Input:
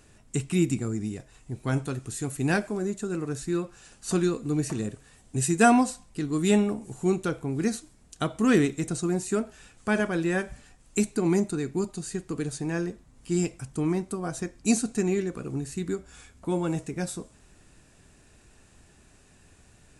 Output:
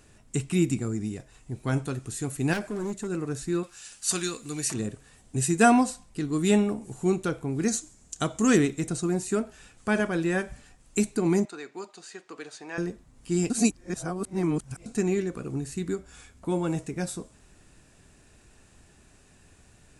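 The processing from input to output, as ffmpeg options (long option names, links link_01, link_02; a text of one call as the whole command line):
ffmpeg -i in.wav -filter_complex "[0:a]asettb=1/sr,asplit=3[link_01][link_02][link_03];[link_01]atrim=end=2.534[link_04];[link_02]atrim=start=2.53:end=3.09,asetpts=PTS-STARTPTS,afade=type=in:duration=0.004:curve=qsin,afade=type=out:start_time=0.556:duration=0.004:curve=qsin,asoftclip=type=hard:threshold=-27dB[link_05];[link_03]atrim=start=3.086[link_06];[link_04][link_05]acrossfade=duration=0.004:curve1=hsin:curve2=qsin[link_07];[link_07][link_06]acrossfade=duration=0.004:curve1=qsin:curve2=hsin,asettb=1/sr,asplit=3[link_08][link_09][link_10];[link_08]atrim=end=3.634[link_11];[link_09]atrim=start=3.63:end=4.74,asetpts=PTS-STARTPTS,afade=type=in:duration=0.004:curve=qsin,afade=type=out:start_time=1.106:duration=0.004:curve=qsin,tiltshelf=frequency=1300:gain=-9.5[link_12];[link_10]atrim=start=4.736[link_13];[link_11][link_12]acrossfade=duration=0.004:curve1=hsin:curve2=qsin[link_14];[link_14][link_13]acrossfade=duration=0.004:curve1=qsin:curve2=hsin,asettb=1/sr,asplit=3[link_15][link_16][link_17];[link_15]atrim=end=7.684[link_18];[link_16]atrim=start=7.68:end=8.57,asetpts=PTS-STARTPTS,afade=type=in:duration=0.004:curve=qsin,afade=type=out:start_time=0.886:duration=0.004:curve=qsin,equalizer=frequency=6900:width_type=o:width=0.63:gain=12.5[link_19];[link_17]atrim=start=8.566[link_20];[link_18][link_19]acrossfade=duration=0.004:curve1=hsin:curve2=qsin[link_21];[link_21][link_20]acrossfade=duration=0.004:curve1=qsin:curve2=hsin,asettb=1/sr,asplit=3[link_22][link_23][link_24];[link_22]atrim=end=11.454[link_25];[link_23]atrim=start=11.45:end=12.78,asetpts=PTS-STARTPTS,afade=type=in:duration=0.004:curve=qsin,afade=type=out:start_time=1.326:duration=0.004:curve=qsin,highpass=640,lowpass=4800[link_26];[link_24]atrim=start=12.776[link_27];[link_25][link_26]acrossfade=duration=0.004:curve1=hsin:curve2=qsin[link_28];[link_28][link_27]acrossfade=duration=0.004:curve1=qsin:curve2=hsin,asplit=3[link_29][link_30][link_31];[link_29]atrim=end=13.502[link_32];[link_30]atrim=start=13.498:end=14.862,asetpts=PTS-STARTPTS,areverse[link_33];[link_31]atrim=start=14.858[link_34];[link_32][link_33]acrossfade=duration=0.004:curve1=hsin:curve2=hsin[link_35];[link_35][link_34]acrossfade=duration=0.004:curve1=hsin:curve2=hsin" out.wav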